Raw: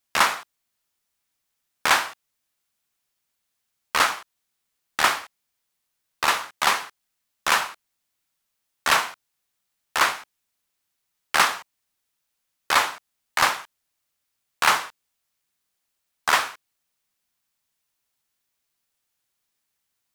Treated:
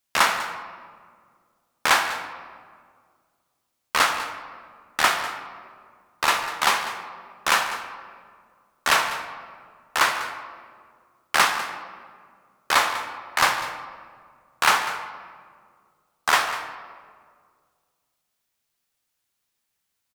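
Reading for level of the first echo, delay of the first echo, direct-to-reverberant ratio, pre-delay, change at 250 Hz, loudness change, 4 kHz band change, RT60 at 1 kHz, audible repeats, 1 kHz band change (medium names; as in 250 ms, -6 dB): -15.0 dB, 197 ms, 6.0 dB, 16 ms, +1.0 dB, -0.5 dB, +0.5 dB, 1.8 s, 1, +1.0 dB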